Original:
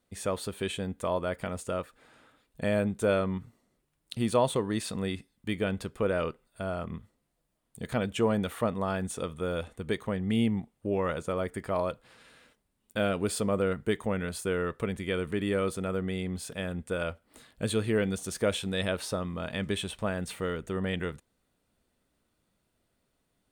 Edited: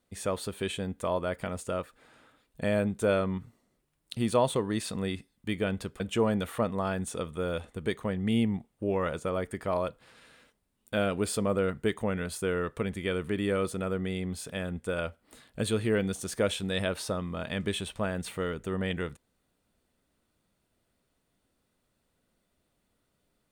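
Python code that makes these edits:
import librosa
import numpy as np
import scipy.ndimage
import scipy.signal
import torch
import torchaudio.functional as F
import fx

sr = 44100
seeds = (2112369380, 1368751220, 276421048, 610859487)

y = fx.edit(x, sr, fx.cut(start_s=6.0, length_s=2.03), tone=tone)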